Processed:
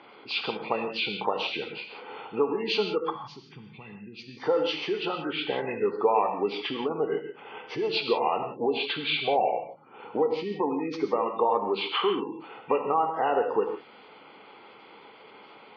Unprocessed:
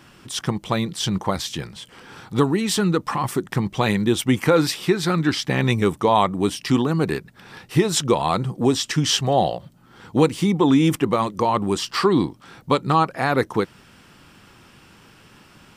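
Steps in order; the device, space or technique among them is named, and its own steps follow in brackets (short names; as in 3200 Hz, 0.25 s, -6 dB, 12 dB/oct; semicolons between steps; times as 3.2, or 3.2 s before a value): spectral gate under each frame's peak -25 dB strong; hearing aid with frequency lowering (nonlinear frequency compression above 1300 Hz 1.5:1; compressor 3:1, threshold -27 dBFS, peak gain reduction 12 dB; speaker cabinet 390–5100 Hz, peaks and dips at 450 Hz +10 dB, 830 Hz +7 dB, 1700 Hz -8 dB, 2800 Hz +4 dB); 3.1–4.37 EQ curve 150 Hz 0 dB, 590 Hz -29 dB, 2900 Hz -9 dB; non-linear reverb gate 0.19 s flat, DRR 4.5 dB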